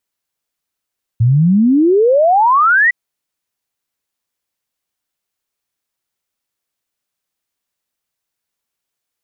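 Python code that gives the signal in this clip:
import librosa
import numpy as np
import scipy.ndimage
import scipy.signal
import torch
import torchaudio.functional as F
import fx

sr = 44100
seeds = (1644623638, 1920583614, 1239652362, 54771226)

y = fx.ess(sr, length_s=1.71, from_hz=110.0, to_hz=2000.0, level_db=-7.5)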